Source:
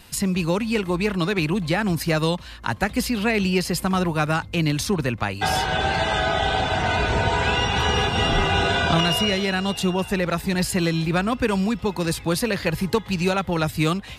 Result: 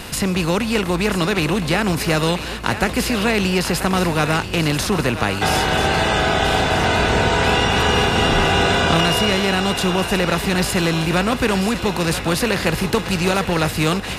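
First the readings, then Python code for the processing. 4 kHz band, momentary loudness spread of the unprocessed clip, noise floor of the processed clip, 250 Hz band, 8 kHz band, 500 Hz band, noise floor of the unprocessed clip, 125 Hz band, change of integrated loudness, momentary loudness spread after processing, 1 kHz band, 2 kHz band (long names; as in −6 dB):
+4.5 dB, 4 LU, −28 dBFS, +3.0 dB, +5.5 dB, +4.5 dB, −39 dBFS, +3.0 dB, +4.0 dB, 4 LU, +4.0 dB, +4.5 dB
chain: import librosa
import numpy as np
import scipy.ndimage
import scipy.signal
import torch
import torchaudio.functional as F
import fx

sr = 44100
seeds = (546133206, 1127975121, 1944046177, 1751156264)

y = fx.bin_compress(x, sr, power=0.6)
y = fx.echo_thinned(y, sr, ms=985, feedback_pct=57, hz=420.0, wet_db=-10.0)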